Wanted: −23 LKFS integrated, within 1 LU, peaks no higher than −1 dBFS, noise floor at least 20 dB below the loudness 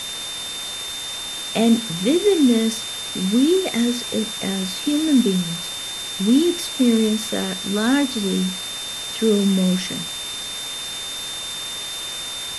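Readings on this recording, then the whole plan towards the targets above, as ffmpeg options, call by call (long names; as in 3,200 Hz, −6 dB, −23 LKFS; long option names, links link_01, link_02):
interfering tone 3,600 Hz; level of the tone −29 dBFS; background noise floor −30 dBFS; target noise floor −41 dBFS; integrated loudness −21.0 LKFS; sample peak −6.0 dBFS; target loudness −23.0 LKFS
→ -af "bandreject=frequency=3600:width=30"
-af "afftdn=noise_reduction=11:noise_floor=-30"
-af "volume=-2dB"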